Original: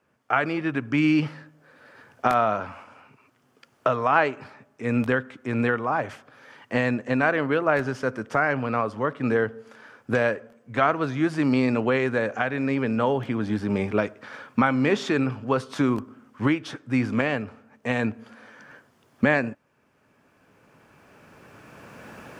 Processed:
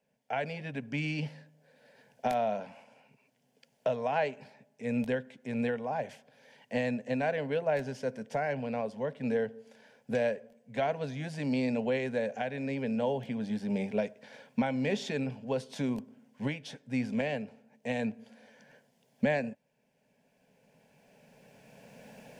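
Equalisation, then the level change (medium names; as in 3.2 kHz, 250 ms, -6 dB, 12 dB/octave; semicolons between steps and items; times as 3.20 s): static phaser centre 330 Hz, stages 6; -5.0 dB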